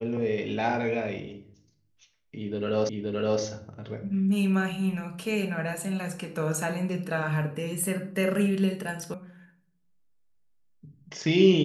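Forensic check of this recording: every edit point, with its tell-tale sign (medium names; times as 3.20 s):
2.89 s: repeat of the last 0.52 s
9.14 s: sound stops dead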